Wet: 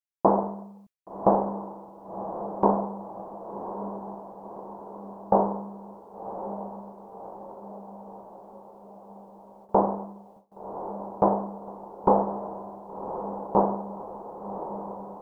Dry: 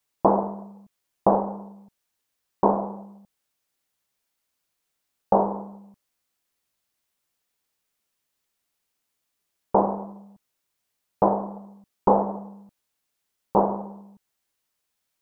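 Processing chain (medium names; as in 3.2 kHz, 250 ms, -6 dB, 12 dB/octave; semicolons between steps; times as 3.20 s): echo that smears into a reverb 1111 ms, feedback 60%, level -10 dB; gate with hold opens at -41 dBFS; trim -1.5 dB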